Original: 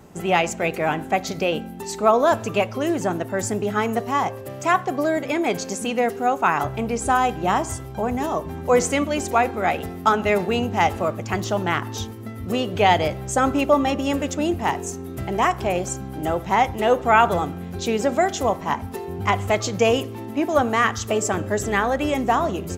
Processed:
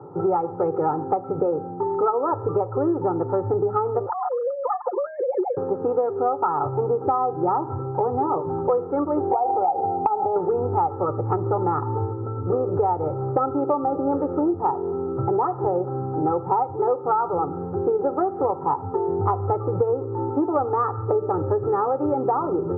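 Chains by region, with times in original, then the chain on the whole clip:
4.06–5.57 s: formants replaced by sine waves + comb 5.7 ms, depth 72% + compression, threshold -27 dBFS
9.31–10.36 s: compression 12:1, threshold -23 dBFS + resonant low-pass 780 Hz, resonance Q 8.7
whole clip: Chebyshev band-pass 100–1300 Hz, order 5; comb 2.3 ms, depth 98%; compression 10:1, threshold -24 dBFS; trim +5.5 dB

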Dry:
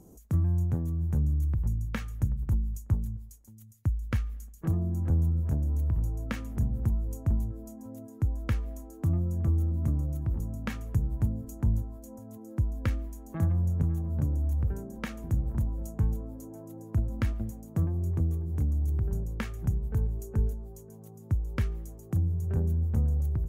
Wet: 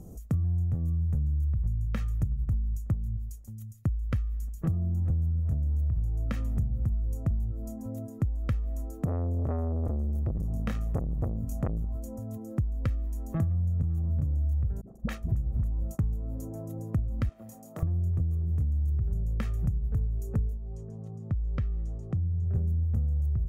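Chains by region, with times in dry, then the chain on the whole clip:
9.05–11.95 s: band-stop 330 Hz, Q 5.7 + doubling 24 ms -3.5 dB + transformer saturation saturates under 690 Hz
14.81–15.99 s: gate -39 dBFS, range -28 dB + phase dispersion highs, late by 54 ms, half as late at 370 Hz
17.29–17.83 s: high-pass 400 Hz + doubling 26 ms -5 dB + transformer saturation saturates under 790 Hz
20.57–22.55 s: compression 1.5:1, threshold -45 dBFS + distance through air 110 m
whole clip: bass shelf 330 Hz +9.5 dB; comb 1.6 ms, depth 37%; compression 6:1, threshold -27 dBFS; trim +1 dB

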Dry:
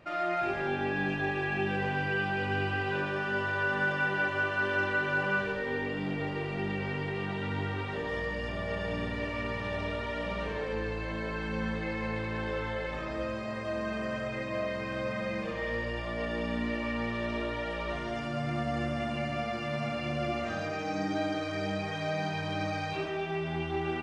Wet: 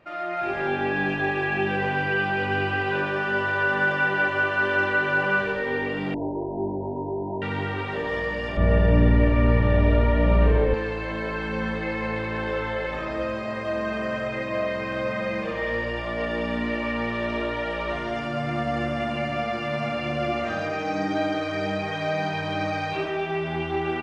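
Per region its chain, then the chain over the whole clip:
6.14–7.42 s: brick-wall FIR low-pass 1 kHz + comb 3.1 ms
8.57–10.74 s: RIAA curve playback + band-stop 5 kHz, Q 20 + doubling 34 ms -4 dB
whole clip: tone controls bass -4 dB, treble -6 dB; level rider gain up to 7 dB

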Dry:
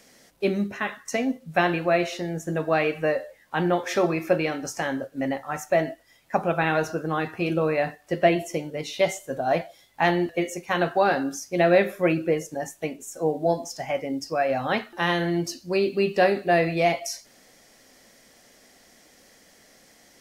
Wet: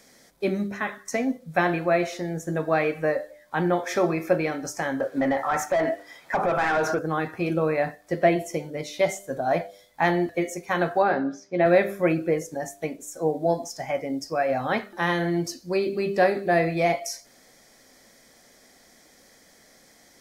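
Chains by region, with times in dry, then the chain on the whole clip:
5.00–6.99 s: treble shelf 7.8 kHz +4 dB + overdrive pedal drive 23 dB, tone 1.6 kHz, clips at -7.5 dBFS + compression 3:1, threshold -21 dBFS
11.02–11.66 s: high-pass 110 Hz + distance through air 220 m + doubling 15 ms -13.5 dB
whole clip: band-stop 2.8 kHz, Q 5.9; dynamic bell 3.9 kHz, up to -4 dB, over -47 dBFS, Q 2.5; de-hum 99.32 Hz, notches 7

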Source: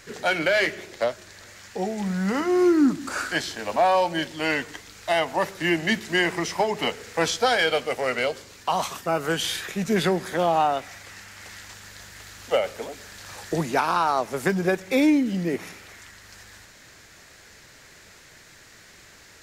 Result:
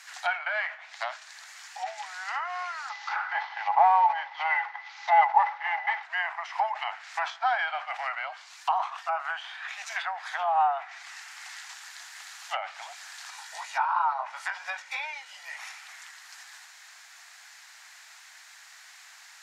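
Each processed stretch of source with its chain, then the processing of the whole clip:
2.89–6.03 s: CVSD coder 32 kbps + small resonant body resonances 220/410/830/2000 Hz, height 17 dB, ringing for 70 ms
13.30–15.57 s: comb 2.1 ms, depth 41% + chorus 2.8 Hz, delay 17.5 ms, depth 4.2 ms
whole clip: steep high-pass 720 Hz 72 dB/octave; low-pass that closes with the level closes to 1.4 kHz, closed at -25.5 dBFS; decay stretcher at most 150 dB/s

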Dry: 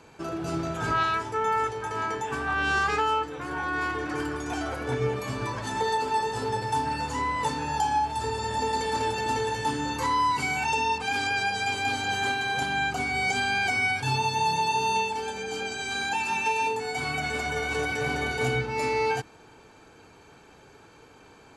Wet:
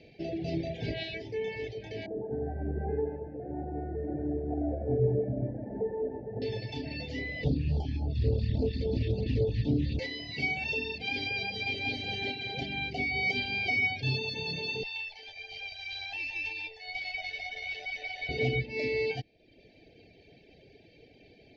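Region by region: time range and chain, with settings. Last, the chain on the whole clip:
2.06–6.42 s: steep low-pass 1.4 kHz 48 dB/octave + two-band feedback delay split 880 Hz, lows 95 ms, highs 177 ms, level -3 dB
7.44–9.99 s: tilt EQ -3.5 dB/octave + phase shifter stages 2, 3.6 Hz, lowest notch 740–1800 Hz + loudspeaker Doppler distortion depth 0.24 ms
14.83–18.29 s: high-pass 750 Hz 24 dB/octave + AM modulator 92 Hz, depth 20% + sliding maximum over 3 samples
whole clip: elliptic band-stop 680–2000 Hz, stop band 60 dB; reverb removal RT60 0.79 s; steep low-pass 5 kHz 48 dB/octave

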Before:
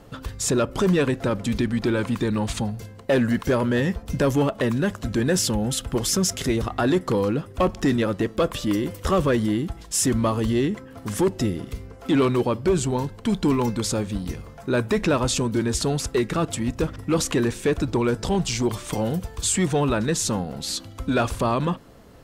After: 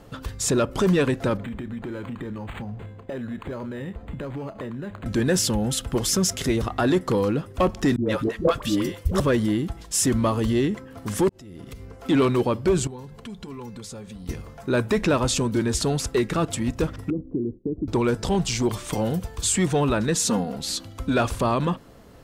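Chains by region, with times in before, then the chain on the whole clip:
1.37–5.06 s: compression 10:1, threshold -29 dBFS + doubling 30 ms -13.5 dB + decimation joined by straight lines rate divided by 8×
7.96–9.20 s: phase dispersion highs, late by 110 ms, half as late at 520 Hz + three bands expanded up and down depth 70%
11.29–11.95 s: compression 8:1, threshold -34 dBFS + slow attack 330 ms
12.87–14.29 s: hum notches 50/100/150 Hz + compression 4:1, threshold -36 dBFS + comb of notches 310 Hz
17.10–17.88 s: gate -35 dBFS, range -14 dB + four-pole ladder low-pass 390 Hz, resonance 45% + three bands compressed up and down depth 70%
20.15–20.57 s: high-pass 98 Hz + comb 4.2 ms, depth 68%
whole clip: none

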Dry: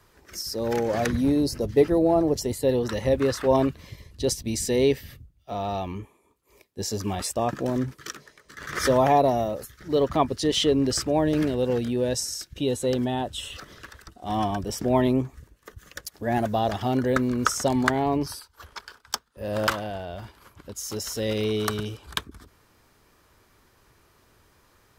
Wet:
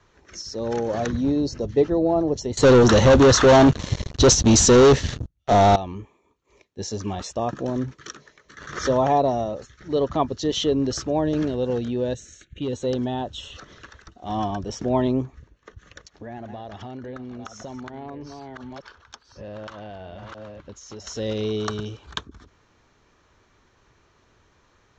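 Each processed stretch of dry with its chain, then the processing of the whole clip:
2.57–5.76 s: waveshaping leveller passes 5 + treble shelf 8.5 kHz +7.5 dB
12.14–12.73 s: static phaser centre 2.2 kHz, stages 4 + hard clipper -21.5 dBFS
15.25–21.07 s: chunks repeated in reverse 595 ms, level -11 dB + compression 5:1, threshold -34 dBFS + distance through air 63 m
whole clip: steep low-pass 7 kHz 72 dB/octave; band-stop 4.9 kHz, Q 7.7; dynamic bell 2.2 kHz, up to -7 dB, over -48 dBFS, Q 2.1

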